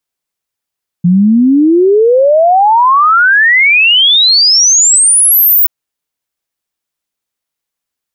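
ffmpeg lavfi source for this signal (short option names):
-f lavfi -i "aevalsrc='0.631*clip(min(t,4.63-t)/0.01,0,1)*sin(2*PI*170*4.63/log(16000/170)*(exp(log(16000/170)*t/4.63)-1))':d=4.63:s=44100"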